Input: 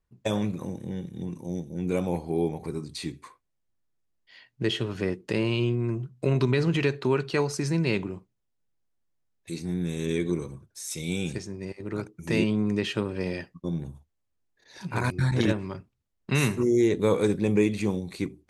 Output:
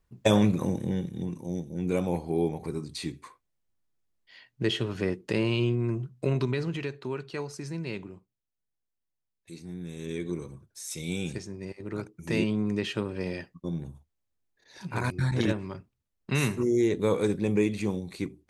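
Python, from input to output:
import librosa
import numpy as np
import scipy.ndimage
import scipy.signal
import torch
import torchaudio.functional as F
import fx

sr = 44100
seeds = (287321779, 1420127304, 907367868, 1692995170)

y = fx.gain(x, sr, db=fx.line((0.79, 6.0), (1.39, -0.5), (6.13, -0.5), (6.88, -9.5), (9.82, -9.5), (10.69, -2.5)))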